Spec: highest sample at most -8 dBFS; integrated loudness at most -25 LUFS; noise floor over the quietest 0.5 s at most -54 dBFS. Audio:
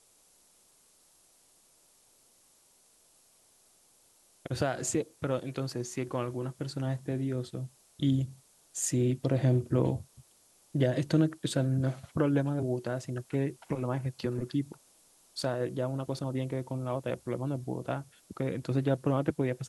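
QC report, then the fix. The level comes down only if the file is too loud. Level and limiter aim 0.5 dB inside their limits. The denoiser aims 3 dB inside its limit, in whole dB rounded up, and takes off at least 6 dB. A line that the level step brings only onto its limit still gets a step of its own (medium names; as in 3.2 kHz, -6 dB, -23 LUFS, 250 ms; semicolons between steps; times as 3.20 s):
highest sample -13.0 dBFS: pass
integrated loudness -32.0 LUFS: pass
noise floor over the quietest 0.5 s -64 dBFS: pass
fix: none needed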